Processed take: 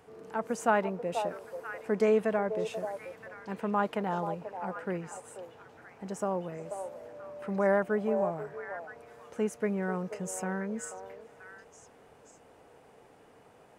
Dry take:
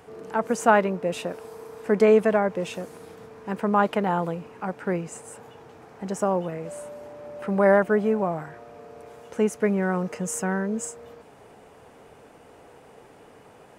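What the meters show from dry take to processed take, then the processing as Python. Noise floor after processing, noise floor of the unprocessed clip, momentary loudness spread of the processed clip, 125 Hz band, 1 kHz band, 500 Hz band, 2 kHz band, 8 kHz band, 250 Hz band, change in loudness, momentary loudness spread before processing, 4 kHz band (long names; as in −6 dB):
−58 dBFS, −51 dBFS, 19 LU, −8.0 dB, −7.0 dB, −7.5 dB, −7.5 dB, −8.0 dB, −8.0 dB, −8.0 dB, 21 LU, can't be measured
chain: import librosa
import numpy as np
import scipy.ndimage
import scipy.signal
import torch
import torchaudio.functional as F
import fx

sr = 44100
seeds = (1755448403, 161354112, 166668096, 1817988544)

y = fx.echo_stepped(x, sr, ms=486, hz=660.0, octaves=1.4, feedback_pct=70, wet_db=-5)
y = F.gain(torch.from_numpy(y), -8.0).numpy()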